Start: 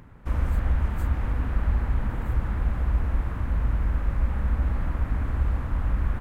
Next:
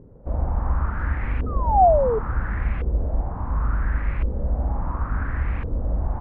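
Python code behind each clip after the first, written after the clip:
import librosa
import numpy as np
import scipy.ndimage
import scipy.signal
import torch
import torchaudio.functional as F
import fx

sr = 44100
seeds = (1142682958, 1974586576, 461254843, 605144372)

y = fx.room_flutter(x, sr, wall_m=6.8, rt60_s=0.22)
y = fx.spec_paint(y, sr, seeds[0], shape='fall', start_s=1.46, length_s=0.73, low_hz=420.0, high_hz=1300.0, level_db=-23.0)
y = fx.filter_lfo_lowpass(y, sr, shape='saw_up', hz=0.71, low_hz=430.0, high_hz=2600.0, q=3.5)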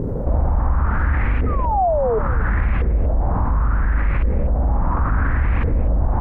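y = fx.rider(x, sr, range_db=10, speed_s=0.5)
y = y + 10.0 ** (-16.0 / 20.0) * np.pad(y, (int(243 * sr / 1000.0), 0))[:len(y)]
y = fx.env_flatten(y, sr, amount_pct=70)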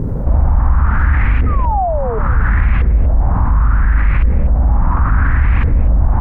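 y = fx.peak_eq(x, sr, hz=470.0, db=-9.0, octaves=1.6)
y = y * librosa.db_to_amplitude(6.5)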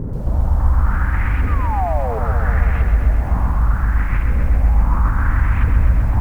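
y = fx.echo_crushed(x, sr, ms=130, feedback_pct=80, bits=7, wet_db=-6.5)
y = y * librosa.db_to_amplitude(-6.0)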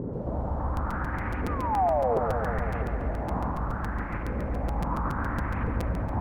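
y = fx.bandpass_q(x, sr, hz=470.0, q=0.82)
y = fx.buffer_crackle(y, sr, first_s=0.76, period_s=0.14, block=256, kind='repeat')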